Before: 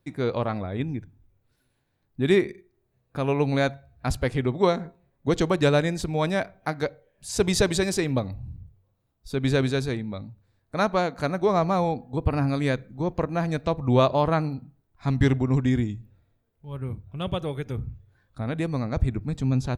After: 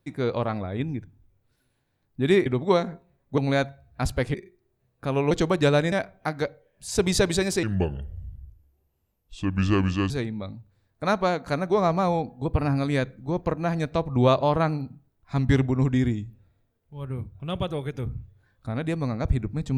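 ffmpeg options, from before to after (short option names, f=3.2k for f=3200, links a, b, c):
-filter_complex "[0:a]asplit=8[a][b][c][d][e][f][g][h];[a]atrim=end=2.462[i];[b]atrim=start=4.388:end=5.312[j];[c]atrim=start=3.428:end=4.392[k];[d]atrim=start=2.458:end=3.432[l];[e]atrim=start=5.308:end=5.922[m];[f]atrim=start=6.328:end=8.044[n];[g]atrim=start=8.04:end=9.82,asetpts=PTS-STARTPTS,asetrate=31752,aresample=44100[o];[h]atrim=start=9.816[p];[i][j]acrossfade=d=0.004:c1=hsin:c2=hsin[q];[q][k]acrossfade=d=0.004:c1=hsin:c2=hsin[r];[r][l]acrossfade=d=0.004:c1=hsin:c2=hsin[s];[s][m]acrossfade=d=0.004:c1=hsin:c2=hsin[t];[t][n]acrossfade=d=0.004:c1=hsin:c2=hsin[u];[u][o]acrossfade=d=0.004:c1=hsin:c2=hsin[v];[v][p]acrossfade=d=0.004:c1=hsin:c2=hsin"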